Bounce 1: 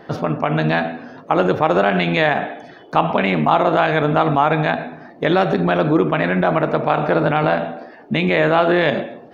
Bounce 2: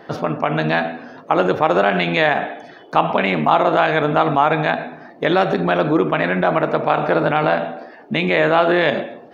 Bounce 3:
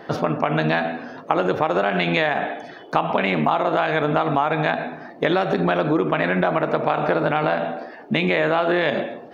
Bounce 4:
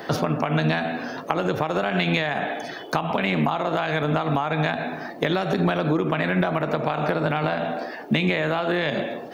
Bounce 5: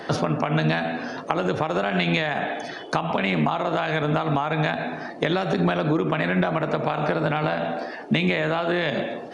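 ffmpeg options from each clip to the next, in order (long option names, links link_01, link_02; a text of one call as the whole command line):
ffmpeg -i in.wav -af "lowshelf=frequency=190:gain=-7.5,volume=1dB" out.wav
ffmpeg -i in.wav -af "acompressor=threshold=-17dB:ratio=6,volume=1.5dB" out.wav
ffmpeg -i in.wav -filter_complex "[0:a]crystalizer=i=2.5:c=0,acrossover=split=190[link_01][link_02];[link_02]acompressor=threshold=-27dB:ratio=3[link_03];[link_01][link_03]amix=inputs=2:normalize=0,volume=3.5dB" out.wav
ffmpeg -i in.wav -af "aresample=22050,aresample=44100" out.wav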